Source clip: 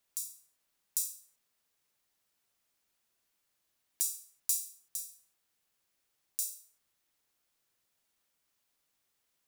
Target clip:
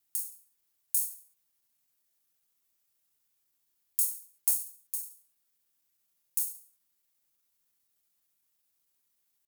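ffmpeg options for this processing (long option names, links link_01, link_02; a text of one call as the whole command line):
ffmpeg -i in.wav -filter_complex "[0:a]aemphasis=mode=production:type=50kf,asetrate=53981,aresample=44100,atempo=0.816958,asplit=2[link_01][link_02];[link_02]acrusher=bits=4:mode=log:mix=0:aa=0.000001,volume=-8.5dB[link_03];[link_01][link_03]amix=inputs=2:normalize=0,afreqshift=-380,volume=-8.5dB" out.wav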